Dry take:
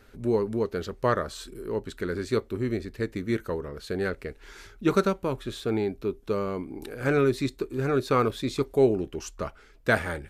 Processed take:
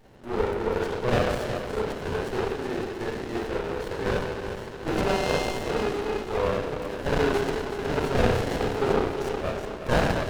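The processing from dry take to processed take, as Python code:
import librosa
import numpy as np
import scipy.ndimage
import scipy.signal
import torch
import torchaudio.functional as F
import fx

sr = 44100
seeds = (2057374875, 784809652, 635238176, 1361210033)

y = 10.0 ** (-20.5 / 20.0) * np.tanh(x / 10.0 ** (-20.5 / 20.0))
y = fx.dmg_tone(y, sr, hz=2100.0, level_db=-32.0, at=(4.96, 5.42), fade=0.02)
y = scipy.signal.sosfilt(scipy.signal.butter(2, 760.0, 'highpass', fs=sr, output='sos'), y)
y = fx.notch(y, sr, hz=1900.0, q=12.0)
y = fx.echo_feedback(y, sr, ms=366, feedback_pct=56, wet_db=-9)
y = fx.rev_spring(y, sr, rt60_s=1.1, pass_ms=(32, 46), chirp_ms=75, drr_db=-7.5)
y = fx.running_max(y, sr, window=33)
y = F.gain(torch.from_numpy(y), 6.0).numpy()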